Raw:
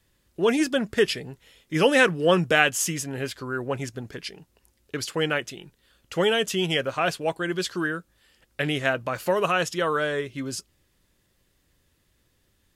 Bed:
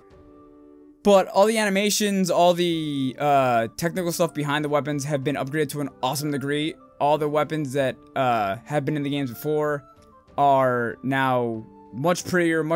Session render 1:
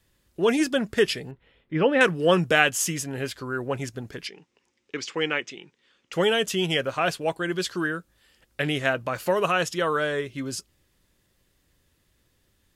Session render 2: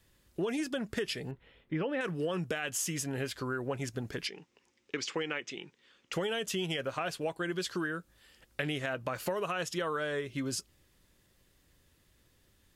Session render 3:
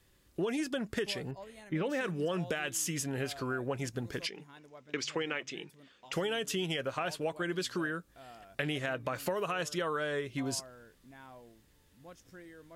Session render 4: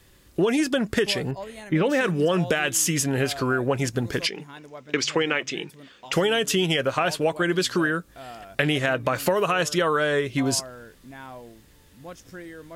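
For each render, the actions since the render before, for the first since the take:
1.31–2.01 s: distance through air 470 m; 4.27–6.13 s: cabinet simulation 230–6500 Hz, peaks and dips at 640 Hz -8 dB, 1.5 kHz -3 dB, 2.2 kHz +5 dB, 4.3 kHz -5 dB
peak limiter -14.5 dBFS, peak gain reduction 11 dB; compression 6:1, threshold -31 dBFS, peak gain reduction 12 dB
add bed -31 dB
trim +11.5 dB

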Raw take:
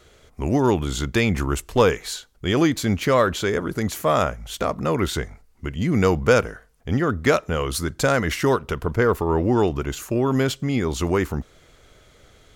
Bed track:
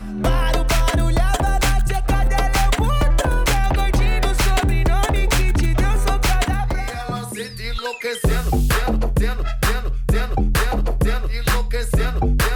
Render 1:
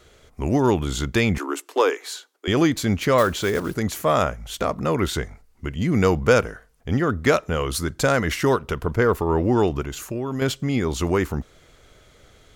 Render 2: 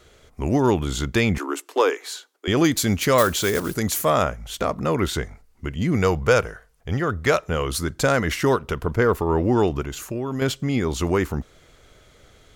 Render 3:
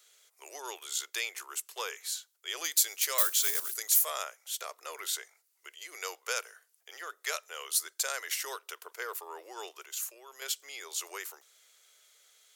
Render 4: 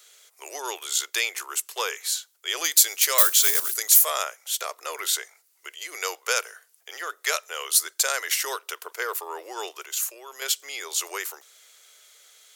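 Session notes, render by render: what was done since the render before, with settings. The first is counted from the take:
1.38–2.48 s: rippled Chebyshev high-pass 270 Hz, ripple 3 dB; 3.18–3.77 s: block-companded coder 5-bit; 9.81–10.42 s: compression 2:1, threshold -28 dBFS
2.64–4.10 s: treble shelf 4.8 kHz +10.5 dB; 5.96–7.50 s: peaking EQ 250 Hz -7.5 dB
steep high-pass 380 Hz 48 dB/octave; differentiator
trim +9 dB; peak limiter -2 dBFS, peak gain reduction 1 dB

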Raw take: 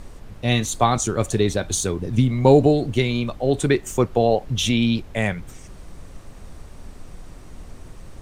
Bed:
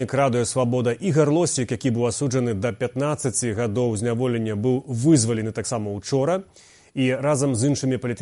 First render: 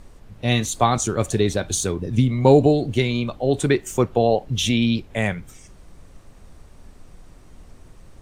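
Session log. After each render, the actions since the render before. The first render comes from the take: noise print and reduce 6 dB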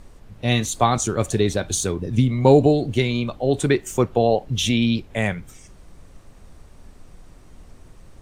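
no audible change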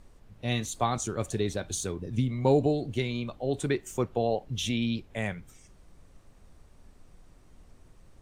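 trim -9.5 dB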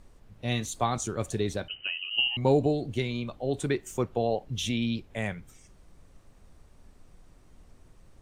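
1.68–2.37 s: frequency inversion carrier 3 kHz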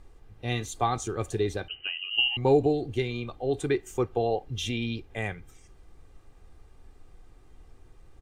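tone controls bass 0 dB, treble -4 dB; comb 2.5 ms, depth 49%

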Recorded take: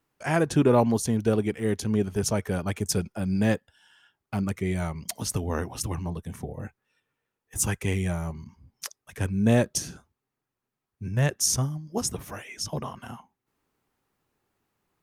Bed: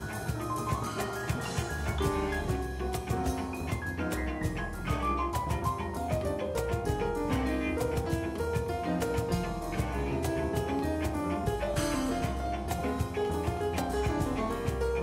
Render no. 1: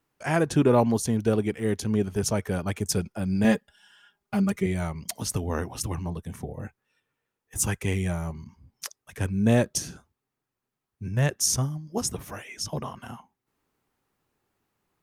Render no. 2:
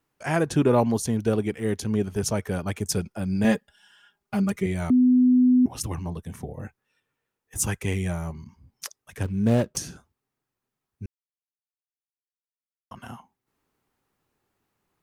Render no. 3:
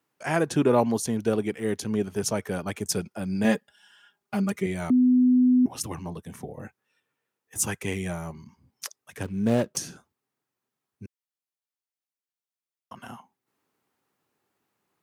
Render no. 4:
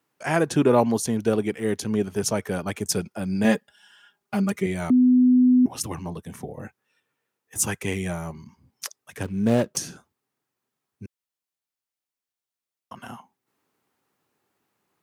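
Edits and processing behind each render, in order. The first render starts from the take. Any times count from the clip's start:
3.44–4.66 s: comb 4.9 ms, depth 91%
4.90–5.66 s: bleep 251 Hz -14 dBFS; 9.23–9.77 s: median filter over 25 samples; 11.06–12.91 s: mute
Bessel high-pass 170 Hz, order 2
trim +2.5 dB

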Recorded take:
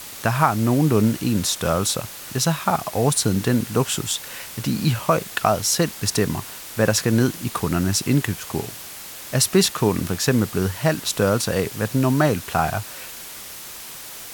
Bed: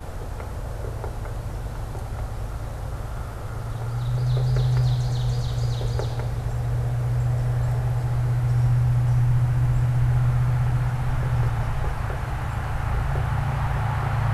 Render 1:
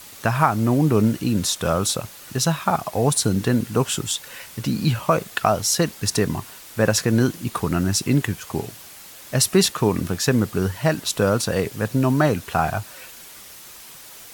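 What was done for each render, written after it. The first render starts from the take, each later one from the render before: noise reduction 6 dB, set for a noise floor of -37 dBFS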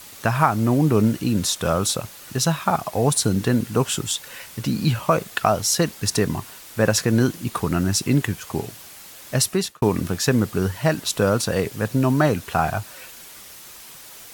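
9.35–9.82 s: fade out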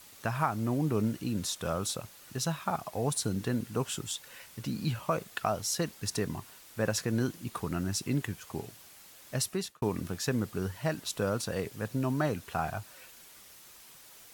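trim -11.5 dB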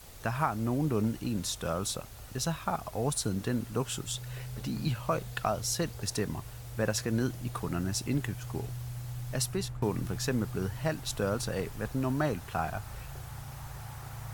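add bed -19 dB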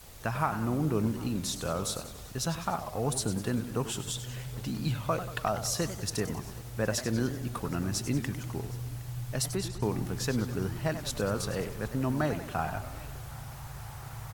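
delay 766 ms -23 dB; modulated delay 97 ms, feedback 58%, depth 204 cents, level -11 dB

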